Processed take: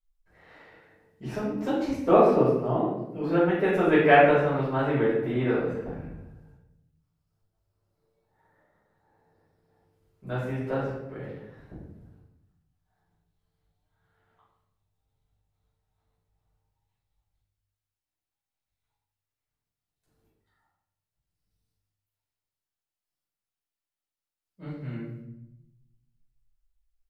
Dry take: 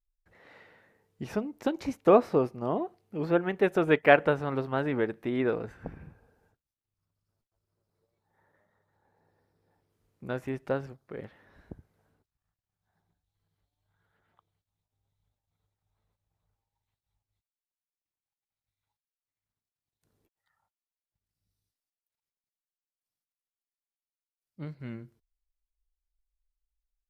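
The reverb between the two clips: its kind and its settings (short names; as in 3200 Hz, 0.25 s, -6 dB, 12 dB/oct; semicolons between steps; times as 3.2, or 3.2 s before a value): shoebox room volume 280 m³, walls mixed, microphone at 5.2 m; gain -10.5 dB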